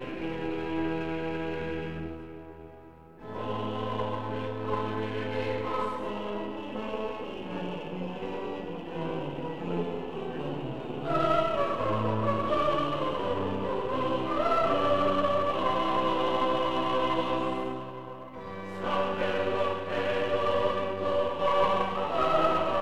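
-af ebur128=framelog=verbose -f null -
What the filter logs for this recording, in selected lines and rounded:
Integrated loudness:
  I:         -29.8 LUFS
  Threshold: -40.1 LUFS
Loudness range:
  LRA:         8.2 LU
  Threshold: -50.3 LUFS
  LRA low:   -35.4 LUFS
  LRA high:  -27.1 LUFS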